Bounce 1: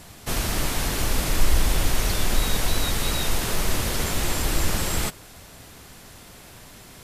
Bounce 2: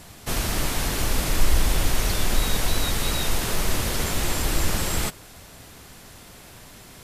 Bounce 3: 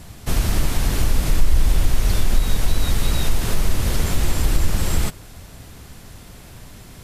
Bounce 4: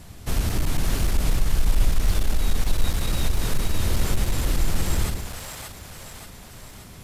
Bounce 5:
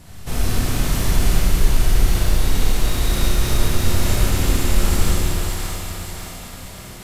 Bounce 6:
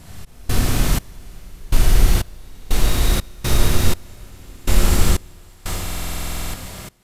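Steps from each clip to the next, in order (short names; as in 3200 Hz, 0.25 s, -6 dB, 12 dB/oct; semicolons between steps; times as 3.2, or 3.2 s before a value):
nothing audible
low shelf 200 Hz +10.5 dB; compressor 2:1, threshold -13 dBFS, peak gain reduction 7 dB
hard clip -12 dBFS, distortion -13 dB; split-band echo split 520 Hz, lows 0.107 s, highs 0.579 s, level -4.5 dB; gain -4 dB
Schroeder reverb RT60 3 s, combs from 25 ms, DRR -6.5 dB; gain -1 dB
step gate "x.xx...xx..x" 61 bpm -24 dB; stuck buffer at 5.84, samples 2048, times 14; gain +2 dB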